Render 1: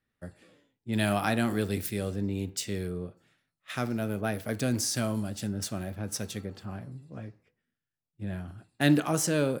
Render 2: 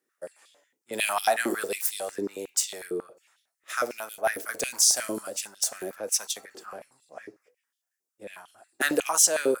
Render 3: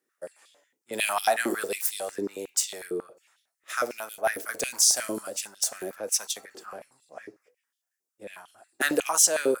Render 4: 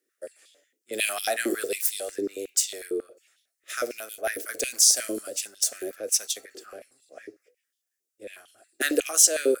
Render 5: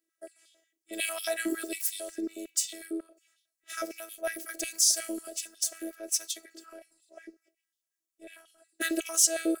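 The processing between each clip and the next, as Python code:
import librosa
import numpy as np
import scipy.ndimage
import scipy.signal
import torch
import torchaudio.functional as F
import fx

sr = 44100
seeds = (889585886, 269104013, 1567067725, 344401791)

y1 = fx.high_shelf_res(x, sr, hz=4900.0, db=8.5, q=1.5)
y1 = fx.filter_held_highpass(y1, sr, hz=11.0, low_hz=370.0, high_hz=3400.0)
y2 = y1
y3 = fx.fixed_phaser(y2, sr, hz=390.0, stages=4)
y3 = y3 * librosa.db_to_amplitude(2.5)
y4 = fx.robotise(y3, sr, hz=327.0)
y4 = y4 * librosa.db_to_amplitude(-3.0)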